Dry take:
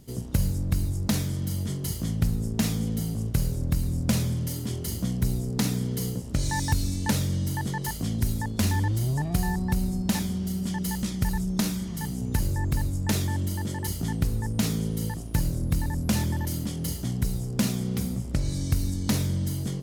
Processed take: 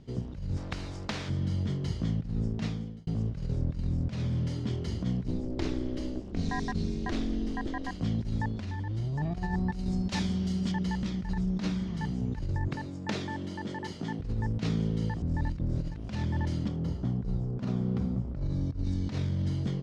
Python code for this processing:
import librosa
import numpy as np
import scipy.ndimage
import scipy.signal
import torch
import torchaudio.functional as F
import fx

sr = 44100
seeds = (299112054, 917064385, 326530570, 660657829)

y = fx.spectral_comp(x, sr, ratio=2.0, at=(0.56, 1.28), fade=0.02)
y = fx.ring_mod(y, sr, carrier_hz=130.0, at=(5.27, 8.0), fade=0.02)
y = fx.high_shelf(y, sr, hz=3400.0, db=10.5, at=(9.72, 10.72))
y = fx.highpass(y, sr, hz=210.0, slope=12, at=(12.68, 14.2))
y = fx.band_shelf(y, sr, hz=4400.0, db=-10.0, octaves=2.9, at=(16.68, 18.84))
y = fx.edit(y, sr, fx.fade_out_span(start_s=2.45, length_s=0.62),
    fx.reverse_span(start_s=15.22, length_s=0.87), tone=tone)
y = scipy.signal.sosfilt(scipy.signal.bessel(4, 3400.0, 'lowpass', norm='mag', fs=sr, output='sos'), y)
y = fx.over_compress(y, sr, threshold_db=-27.0, ratio=-0.5)
y = F.gain(torch.from_numpy(y), -2.0).numpy()